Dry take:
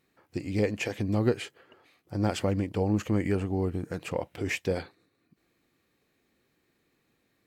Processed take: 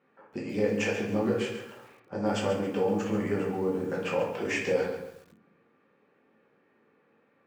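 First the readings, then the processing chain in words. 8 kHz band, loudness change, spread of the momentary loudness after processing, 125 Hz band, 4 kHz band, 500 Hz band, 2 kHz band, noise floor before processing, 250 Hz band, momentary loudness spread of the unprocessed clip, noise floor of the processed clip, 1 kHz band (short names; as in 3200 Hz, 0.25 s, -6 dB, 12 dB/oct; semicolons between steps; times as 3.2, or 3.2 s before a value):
0.0 dB, 0.0 dB, 12 LU, -7.0 dB, +0.5 dB, +3.0 dB, +2.5 dB, -74 dBFS, -1.0 dB, 10 LU, -68 dBFS, +3.0 dB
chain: low-pass opened by the level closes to 2200 Hz, open at -27 dBFS; high shelf 2200 Hz -8 dB; in parallel at -2.5 dB: limiter -24.5 dBFS, peak gain reduction 11 dB; on the sum: compressor 2:1, threshold -31 dBFS, peak gain reduction 8 dB; short-mantissa float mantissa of 6-bit; speaker cabinet 310–8100 Hz, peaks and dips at 330 Hz -9 dB, 670 Hz -6 dB, 2100 Hz -5 dB, 4000 Hz -8 dB; shoebox room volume 120 m³, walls mixed, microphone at 1.2 m; lo-fi delay 0.137 s, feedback 35%, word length 9-bit, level -10 dB; gain +3.5 dB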